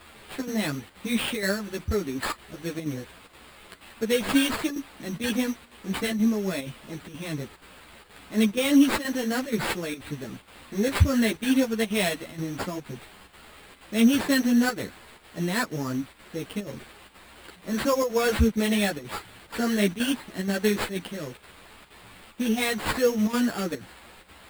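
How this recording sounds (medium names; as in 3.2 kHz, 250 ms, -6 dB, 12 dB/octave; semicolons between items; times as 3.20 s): a quantiser's noise floor 8-bit, dither triangular; chopped level 2.1 Hz, depth 60%, duty 85%; aliases and images of a low sample rate 6 kHz, jitter 0%; a shimmering, thickened sound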